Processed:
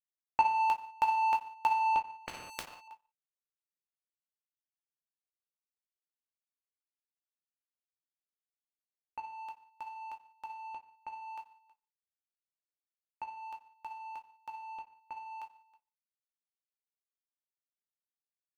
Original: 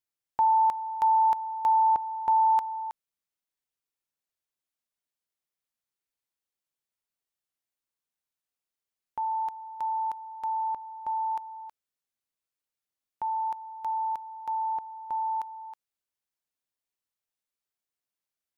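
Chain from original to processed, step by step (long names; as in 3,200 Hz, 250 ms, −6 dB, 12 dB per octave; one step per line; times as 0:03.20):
reverb whose tail is shaped and stops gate 230 ms falling, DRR 3.5 dB
power curve on the samples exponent 2
0:02.26–0:02.88: every bin compressed towards the loudest bin 4 to 1
level +3 dB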